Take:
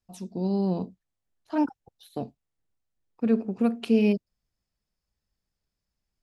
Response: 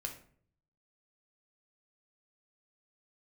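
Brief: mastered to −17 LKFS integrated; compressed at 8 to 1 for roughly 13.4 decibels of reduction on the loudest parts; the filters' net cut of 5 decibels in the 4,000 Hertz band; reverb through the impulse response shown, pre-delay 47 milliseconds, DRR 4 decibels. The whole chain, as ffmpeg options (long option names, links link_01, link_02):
-filter_complex "[0:a]equalizer=frequency=4000:width_type=o:gain=-7.5,acompressor=threshold=-31dB:ratio=8,asplit=2[link_01][link_02];[1:a]atrim=start_sample=2205,adelay=47[link_03];[link_02][link_03]afir=irnorm=-1:irlink=0,volume=-3dB[link_04];[link_01][link_04]amix=inputs=2:normalize=0,volume=20dB"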